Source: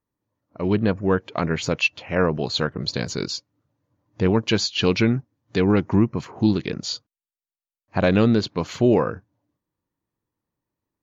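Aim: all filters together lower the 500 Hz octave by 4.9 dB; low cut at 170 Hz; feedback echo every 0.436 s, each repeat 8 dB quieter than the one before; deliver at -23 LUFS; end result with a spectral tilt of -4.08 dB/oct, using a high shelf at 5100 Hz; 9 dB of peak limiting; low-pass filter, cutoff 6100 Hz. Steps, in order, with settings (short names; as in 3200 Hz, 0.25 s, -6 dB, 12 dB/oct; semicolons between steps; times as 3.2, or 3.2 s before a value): HPF 170 Hz; LPF 6100 Hz; bell 500 Hz -6 dB; high shelf 5100 Hz -3.5 dB; limiter -14.5 dBFS; feedback echo 0.436 s, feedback 40%, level -8 dB; gain +4.5 dB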